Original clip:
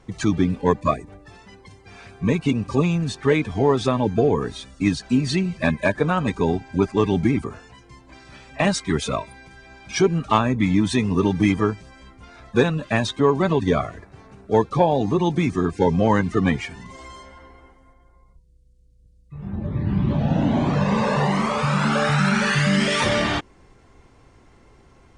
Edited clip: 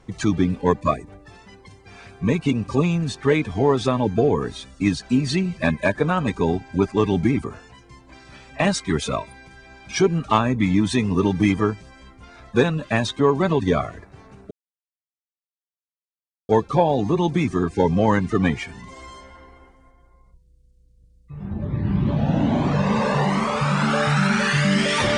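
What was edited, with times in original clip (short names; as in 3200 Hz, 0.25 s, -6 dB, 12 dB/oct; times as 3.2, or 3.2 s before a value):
14.51 insert silence 1.98 s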